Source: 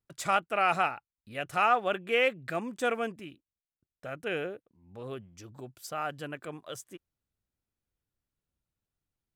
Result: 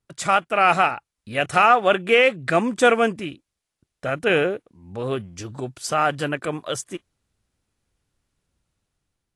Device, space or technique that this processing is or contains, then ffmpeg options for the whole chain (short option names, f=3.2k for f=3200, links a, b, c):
low-bitrate web radio: -af "dynaudnorm=f=420:g=5:m=6dB,alimiter=limit=-13dB:level=0:latency=1:release=271,volume=8dB" -ar 24000 -c:a aac -b:a 48k